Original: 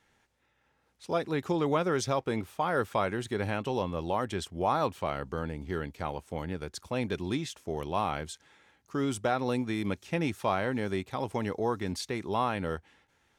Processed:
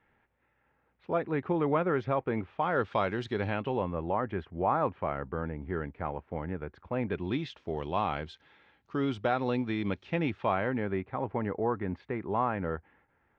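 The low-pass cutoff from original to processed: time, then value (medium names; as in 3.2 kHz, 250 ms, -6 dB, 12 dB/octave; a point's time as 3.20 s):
low-pass 24 dB/octave
2.39 s 2.4 kHz
3.18 s 5.2 kHz
3.96 s 2.1 kHz
6.99 s 2.1 kHz
7.41 s 3.8 kHz
10.03 s 3.8 kHz
11.16 s 2 kHz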